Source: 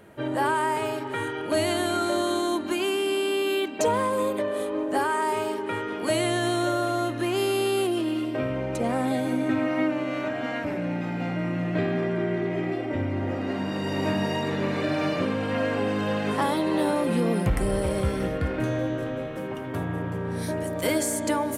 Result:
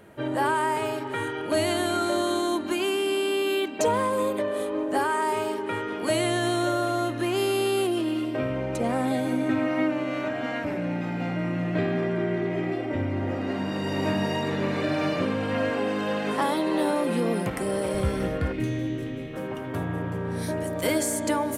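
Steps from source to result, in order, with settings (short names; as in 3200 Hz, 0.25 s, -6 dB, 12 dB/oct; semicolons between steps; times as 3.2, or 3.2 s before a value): 15.7–17.94 HPF 190 Hz 12 dB/oct; 18.52–19.34 spectral gain 470–1800 Hz -11 dB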